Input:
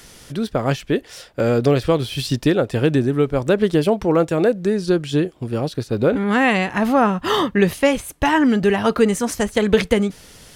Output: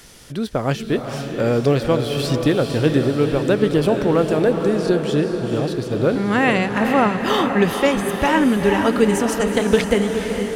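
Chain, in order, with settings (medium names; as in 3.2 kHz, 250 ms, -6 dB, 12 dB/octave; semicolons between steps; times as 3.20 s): echo that smears into a reverb 461 ms, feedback 60%, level -6 dB; trim -1 dB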